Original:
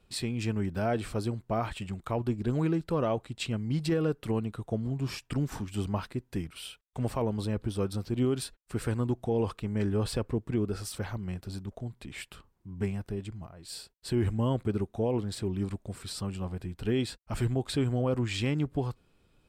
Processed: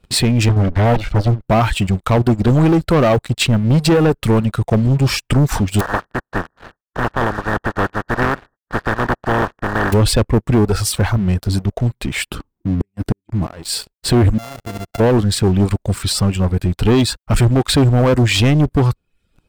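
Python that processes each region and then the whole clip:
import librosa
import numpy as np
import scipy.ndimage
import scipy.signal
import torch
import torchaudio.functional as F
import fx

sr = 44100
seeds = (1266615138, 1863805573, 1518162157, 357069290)

y = fx.chain(x, sr, fx.lower_of_two(delay_ms=1.4),
    fx.lowpass(hz=2800.0, slope=12),
    fx.doppler_dist(depth_ms=0.7), at=(0.49, 1.47))
y = fx.spec_flatten(y, sr, power=0.12, at=(5.79, 9.92), fade=0.02)
y = fx.brickwall_lowpass(y, sr, high_hz=1900.0, at=(5.79, 9.92), fade=0.02)
y = fx.chain(y, sr, fx.peak_eq(hz=280.0, db=11.5, octaves=0.77),
    fx.gate_flip(shuts_db=-23.0, range_db=-39), at=(12.26, 13.54))
y = fx.chain(y, sr, fx.sample_sort(block=64),
    fx.level_steps(step_db=23), at=(14.38, 15.0))
y = fx.dereverb_blind(y, sr, rt60_s=0.62)
y = fx.low_shelf(y, sr, hz=150.0, db=5.0)
y = fx.leveller(y, sr, passes=3)
y = y * librosa.db_to_amplitude(9.0)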